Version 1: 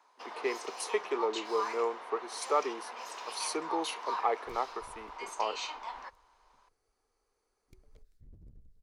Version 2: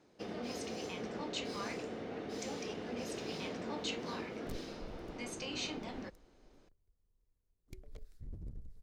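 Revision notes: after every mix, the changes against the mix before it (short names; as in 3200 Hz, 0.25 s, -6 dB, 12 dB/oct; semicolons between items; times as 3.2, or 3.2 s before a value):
speech: muted; first sound: remove resonant high-pass 990 Hz, resonance Q 6.6; second sound +8.5 dB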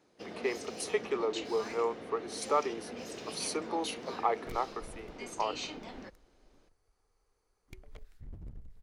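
speech: unmuted; first sound: add low shelf 360 Hz -4.5 dB; second sound: add band shelf 1500 Hz +8 dB 2.5 oct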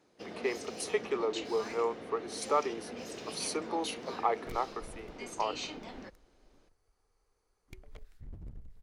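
none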